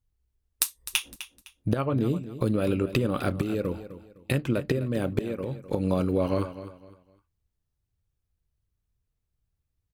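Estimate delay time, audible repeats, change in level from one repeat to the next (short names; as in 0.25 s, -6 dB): 0.255 s, 3, -10.5 dB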